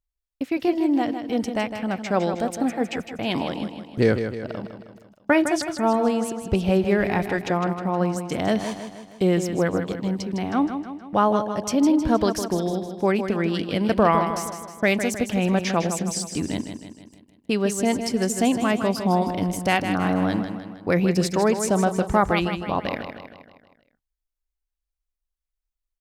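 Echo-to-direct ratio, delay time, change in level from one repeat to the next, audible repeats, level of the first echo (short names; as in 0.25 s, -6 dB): -7.0 dB, 0.157 s, -5.5 dB, 5, -8.5 dB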